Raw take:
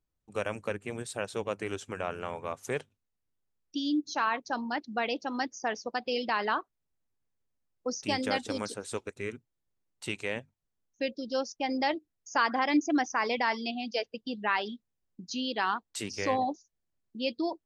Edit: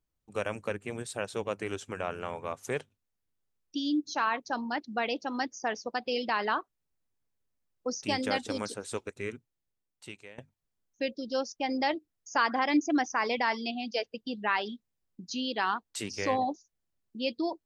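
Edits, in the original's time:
0:09.32–0:10.38: fade out, to −21 dB

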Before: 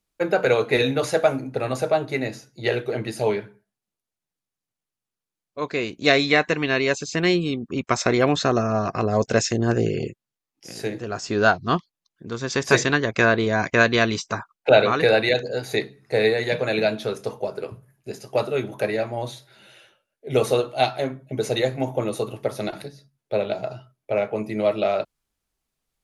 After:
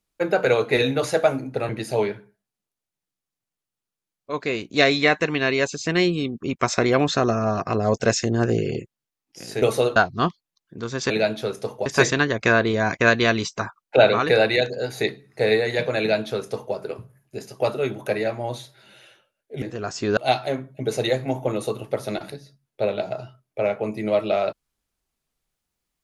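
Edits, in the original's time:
0:01.69–0:02.97: remove
0:10.90–0:11.45: swap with 0:20.35–0:20.69
0:16.72–0:17.48: duplicate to 0:12.59

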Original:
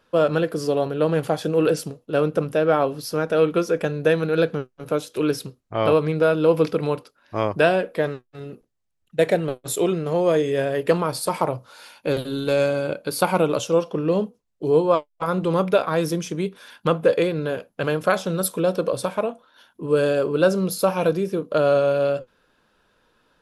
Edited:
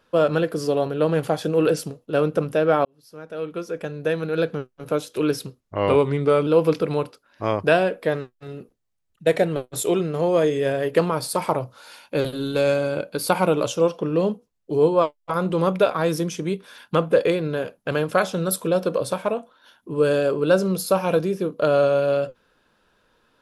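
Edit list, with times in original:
0:02.85–0:04.97: fade in
0:05.61–0:06.39: play speed 91%

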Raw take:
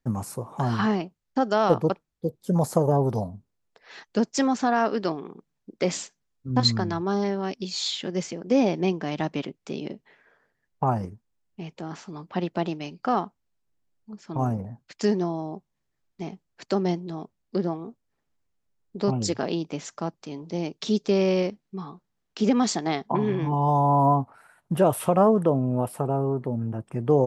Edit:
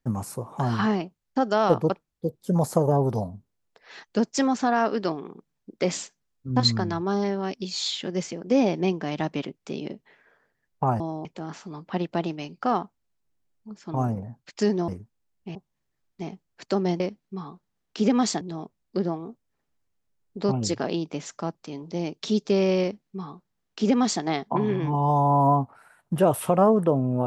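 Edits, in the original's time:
0:11.00–0:11.67: swap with 0:15.30–0:15.55
0:21.41–0:22.82: duplicate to 0:17.00

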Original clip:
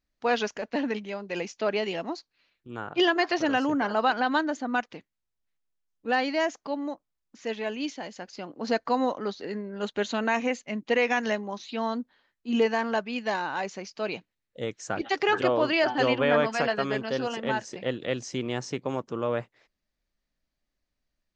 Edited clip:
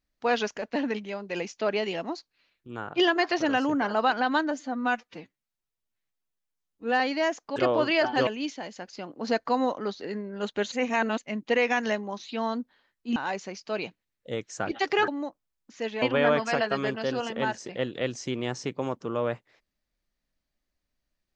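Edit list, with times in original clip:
0:04.51–0:06.17: time-stretch 1.5×
0:06.73–0:07.67: swap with 0:15.38–0:16.09
0:10.12–0:10.58: reverse
0:12.56–0:13.46: remove

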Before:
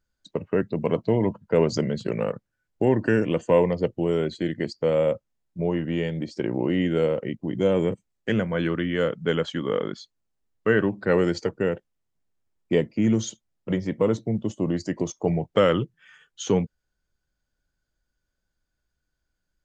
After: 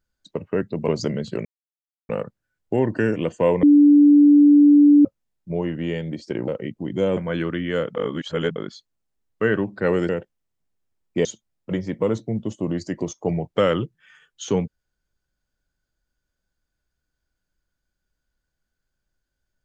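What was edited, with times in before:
0:00.88–0:01.61: remove
0:02.18: splice in silence 0.64 s
0:03.72–0:05.14: beep over 291 Hz −8.5 dBFS
0:06.57–0:07.11: remove
0:07.80–0:08.42: remove
0:09.20–0:09.81: reverse
0:11.34–0:11.64: remove
0:12.80–0:13.24: remove

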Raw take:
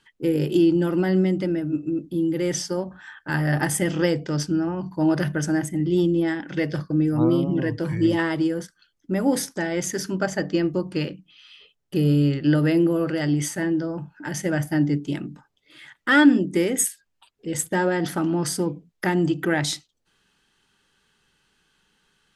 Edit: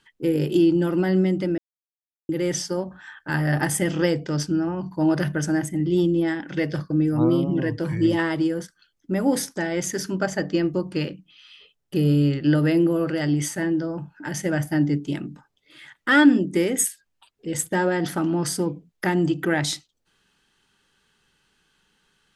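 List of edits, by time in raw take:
0:01.58–0:02.29: silence

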